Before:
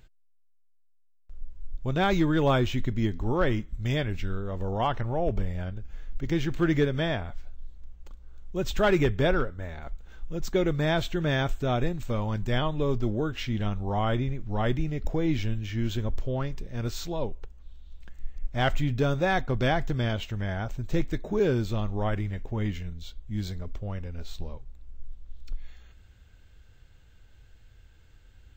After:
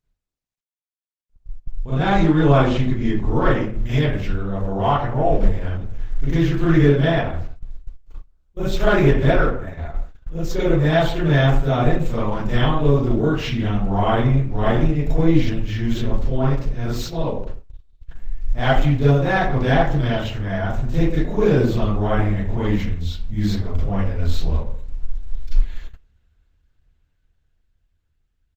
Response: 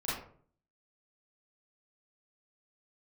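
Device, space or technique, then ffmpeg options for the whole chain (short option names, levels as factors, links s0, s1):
speakerphone in a meeting room: -filter_complex "[0:a]asettb=1/sr,asplit=3[s0][s1][s2];[s0]atrim=end=3.924[s3];[s1]atrim=start=3.92:end=4.91,asetpts=PTS-STARTPTS,afade=t=in:d=0.004:c=qsin,afade=t=out:st=0.986:d=0.004:c=qsin,bandreject=f=189.7:t=h:w=4,bandreject=f=379.4:t=h:w=4,bandreject=f=569.1:t=h:w=4,bandreject=f=758.8:t=h:w=4,bandreject=f=948.5:t=h:w=4,bandreject=f=1138.2:t=h:w=4,bandreject=f=1327.9:t=h:w=4,bandreject=f=1517.6:t=h:w=4,bandreject=f=1707.3:t=h:w=4,bandreject=f=1897:t=h:w=4,bandreject=f=2086.7:t=h:w=4,bandreject=f=2276.4:t=h:w=4,bandreject=f=2466.1:t=h:w=4,bandreject=f=2655.8:t=h:w=4,bandreject=f=2845.5:t=h:w=4,bandreject=f=3035.2:t=h:w=4,bandreject=f=3224.9:t=h:w=4,bandreject=f=3414.6:t=h:w=4,bandreject=f=3604.3:t=h:w=4,bandreject=f=3794:t=h:w=4,bandreject=f=3983.7:t=h:w=4,bandreject=f=4173.4:t=h:w=4,bandreject=f=4363.1:t=h:w=4,bandreject=f=4552.8:t=h:w=4,bandreject=f=4742.5:t=h:w=4,bandreject=f=4932.2:t=h:w=4,bandreject=f=5121.9:t=h:w=4,bandreject=f=5311.6:t=h:w=4,bandreject=f=5501.3:t=h:w=4,bandreject=f=5691:t=h:w=4[s4];[s2]atrim=start=4.906[s5];[s3][s4]acrossfade=d=0.004:c1=hsin:c2=qsin[s6];[s6][s5]acrossfade=d=0.004:c1=qsin:c2=hsin[s7];[1:a]atrim=start_sample=2205[s8];[s7][s8]afir=irnorm=-1:irlink=0,asplit=2[s9][s10];[s10]adelay=170,highpass=300,lowpass=3400,asoftclip=type=hard:threshold=0.251,volume=0.0562[s11];[s9][s11]amix=inputs=2:normalize=0,dynaudnorm=f=220:g=17:m=3.55,agate=range=0.0794:threshold=0.0501:ratio=16:detection=peak,volume=0.891" -ar 48000 -c:a libopus -b:a 16k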